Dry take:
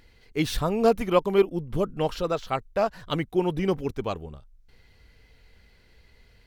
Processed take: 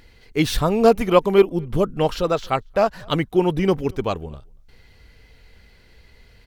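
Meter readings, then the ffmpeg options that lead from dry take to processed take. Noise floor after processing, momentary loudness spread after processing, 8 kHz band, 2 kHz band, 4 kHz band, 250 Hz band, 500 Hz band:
-52 dBFS, 10 LU, n/a, +6.0 dB, +6.0 dB, +6.0 dB, +6.0 dB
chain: -filter_complex "[0:a]asplit=2[a][b];[b]adelay=233.2,volume=-29dB,highshelf=f=4k:g=-5.25[c];[a][c]amix=inputs=2:normalize=0,volume=6dB"

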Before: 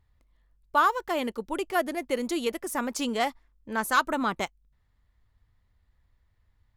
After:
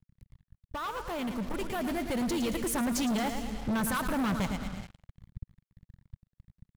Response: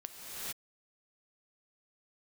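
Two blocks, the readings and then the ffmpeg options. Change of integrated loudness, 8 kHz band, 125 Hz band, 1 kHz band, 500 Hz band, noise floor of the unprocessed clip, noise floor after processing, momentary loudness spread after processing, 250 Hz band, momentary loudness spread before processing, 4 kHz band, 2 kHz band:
-3.5 dB, +0.5 dB, +12.0 dB, -8.5 dB, -5.5 dB, -69 dBFS, under -85 dBFS, 16 LU, +2.5 dB, 8 LU, -3.5 dB, -7.5 dB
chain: -filter_complex "[0:a]alimiter=limit=-20dB:level=0:latency=1:release=14,bass=f=250:g=7,treble=f=4k:g=0,acompressor=threshold=-35dB:ratio=2,aecho=1:1:111|222|333|444|555:0.316|0.149|0.0699|0.0328|0.0154,asplit=2[a][b];[1:a]atrim=start_sample=2205,asetrate=48510,aresample=44100[c];[b][c]afir=irnorm=-1:irlink=0,volume=-15dB[d];[a][d]amix=inputs=2:normalize=0,acrusher=bits=7:mix=0:aa=0.5,lowshelf=f=230:t=q:w=1.5:g=9.5,asoftclip=type=hard:threshold=-33dB,dynaudnorm=f=370:g=9:m=6dB"

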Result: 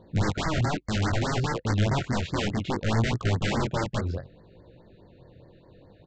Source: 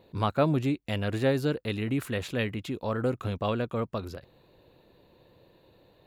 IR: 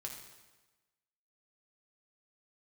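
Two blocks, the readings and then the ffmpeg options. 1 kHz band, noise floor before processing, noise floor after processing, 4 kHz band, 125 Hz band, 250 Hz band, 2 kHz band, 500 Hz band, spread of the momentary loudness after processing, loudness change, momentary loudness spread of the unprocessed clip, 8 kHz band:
+3.5 dB, -62 dBFS, -55 dBFS, +5.5 dB, +5.5 dB, +0.5 dB, +4.5 dB, -2.5 dB, 4 LU, +2.0 dB, 8 LU, +10.0 dB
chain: -af "aresample=16000,aeval=exprs='(mod(20*val(0)+1,2)-1)/20':c=same,aresample=44100,bass=f=250:g=6,treble=f=4k:g=-11,flanger=delay=17:depth=7.6:speed=0.64,afftfilt=real='re*(1-between(b*sr/1024,910*pow(3100/910,0.5+0.5*sin(2*PI*4.8*pts/sr))/1.41,910*pow(3100/910,0.5+0.5*sin(2*PI*4.8*pts/sr))*1.41))':imag='im*(1-between(b*sr/1024,910*pow(3100/910,0.5+0.5*sin(2*PI*4.8*pts/sr))/1.41,910*pow(3100/910,0.5+0.5*sin(2*PI*4.8*pts/sr))*1.41))':win_size=1024:overlap=0.75,volume=7.5dB"

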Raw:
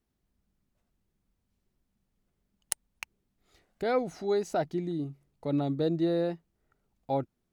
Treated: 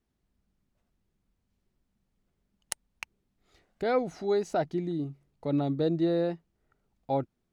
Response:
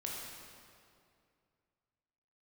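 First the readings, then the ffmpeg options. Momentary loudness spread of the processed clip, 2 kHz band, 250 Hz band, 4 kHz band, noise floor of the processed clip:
13 LU, +0.5 dB, +1.0 dB, 0.0 dB, -79 dBFS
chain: -af "highshelf=f=10k:g=-10.5,volume=1dB"

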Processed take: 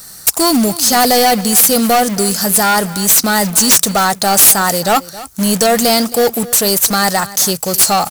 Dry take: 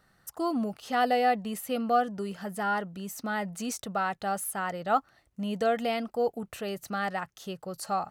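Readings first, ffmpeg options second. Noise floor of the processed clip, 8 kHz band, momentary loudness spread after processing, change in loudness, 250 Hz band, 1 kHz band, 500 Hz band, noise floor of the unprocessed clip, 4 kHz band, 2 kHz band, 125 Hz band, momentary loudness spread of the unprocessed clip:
-35 dBFS, +31.0 dB, 6 LU, +19.5 dB, +17.0 dB, +14.0 dB, +15.0 dB, -69 dBFS, +26.0 dB, +16.0 dB, +18.0 dB, 11 LU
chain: -filter_complex "[0:a]aexciter=amount=15.6:drive=3.3:freq=4.3k,acrusher=bits=2:mode=log:mix=0:aa=0.000001,aeval=exprs='1.58*sin(PI/2*7.08*val(0)/1.58)':c=same,aeval=exprs='1.58*(cos(1*acos(clip(val(0)/1.58,-1,1)))-cos(1*PI/2))+0.282*(cos(5*acos(clip(val(0)/1.58,-1,1)))-cos(5*PI/2))':c=same,asplit=2[a][b];[b]aecho=0:1:270:0.133[c];[a][c]amix=inputs=2:normalize=0,volume=-7.5dB"

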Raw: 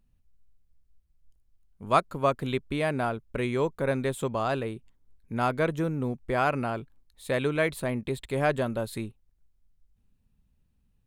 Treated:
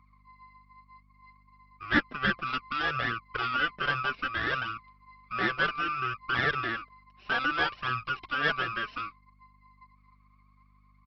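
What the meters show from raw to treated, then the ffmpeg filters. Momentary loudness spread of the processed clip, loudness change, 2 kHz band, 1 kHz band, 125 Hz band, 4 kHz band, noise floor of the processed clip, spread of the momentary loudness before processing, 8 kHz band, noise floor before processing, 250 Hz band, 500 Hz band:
9 LU, -1.0 dB, +7.0 dB, -0.5 dB, -9.0 dB, +7.5 dB, -62 dBFS, 11 LU, under -15 dB, -69 dBFS, -7.0 dB, -12.0 dB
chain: -af "afftfilt=real='real(if(lt(b,960),b+48*(1-2*mod(floor(b/48),2)),b),0)':imag='imag(if(lt(b,960),b+48*(1-2*mod(floor(b/48),2)),b),0)':win_size=2048:overlap=0.75,aresample=11025,aeval=exprs='max(val(0),0)':c=same,aresample=44100,highpass=f=110:p=1,acontrast=77,aemphasis=mode=reproduction:type=50kf,flanger=delay=0.6:depth=5.4:regen=4:speed=0.63:shape=triangular,aeval=exprs='val(0)+0.000891*(sin(2*PI*50*n/s)+sin(2*PI*2*50*n/s)/2+sin(2*PI*3*50*n/s)/3+sin(2*PI*4*50*n/s)/4+sin(2*PI*5*50*n/s)/5)':c=same"

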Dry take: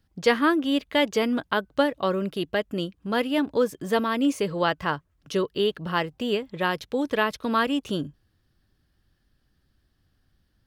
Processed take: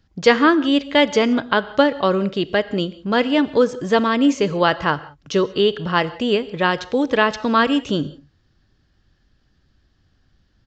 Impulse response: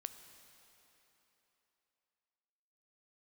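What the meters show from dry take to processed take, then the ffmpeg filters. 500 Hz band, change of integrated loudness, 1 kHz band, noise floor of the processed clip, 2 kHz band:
+7.0 dB, +7.0 dB, +7.0 dB, -62 dBFS, +7.0 dB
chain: -filter_complex "[0:a]asplit=2[a][b];[1:a]atrim=start_sample=2205,atrim=end_sample=4410,asetrate=23373,aresample=44100[c];[b][c]afir=irnorm=-1:irlink=0,volume=5dB[d];[a][d]amix=inputs=2:normalize=0,aresample=16000,aresample=44100,volume=-1.5dB"

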